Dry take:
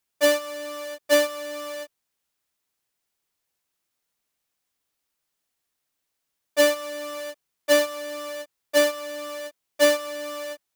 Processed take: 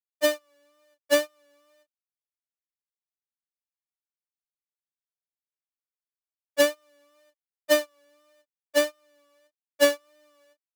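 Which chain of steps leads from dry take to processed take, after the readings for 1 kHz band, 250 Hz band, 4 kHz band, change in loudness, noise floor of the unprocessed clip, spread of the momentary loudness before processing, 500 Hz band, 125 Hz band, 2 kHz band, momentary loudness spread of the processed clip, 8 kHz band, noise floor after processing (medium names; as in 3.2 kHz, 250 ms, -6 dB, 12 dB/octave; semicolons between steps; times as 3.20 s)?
-5.5 dB, -3.5 dB, -3.5 dB, -1.0 dB, -80 dBFS, 16 LU, -3.5 dB, no reading, -3.5 dB, 14 LU, -3.5 dB, under -85 dBFS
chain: wow and flutter 39 cents; upward expansion 2.5:1, over -36 dBFS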